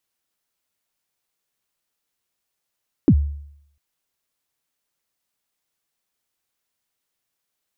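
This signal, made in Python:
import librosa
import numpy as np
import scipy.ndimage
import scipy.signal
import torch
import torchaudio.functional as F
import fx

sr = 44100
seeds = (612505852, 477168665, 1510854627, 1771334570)

y = fx.drum_kick(sr, seeds[0], length_s=0.7, level_db=-7, start_hz=350.0, end_hz=72.0, sweep_ms=64.0, decay_s=0.71, click=False)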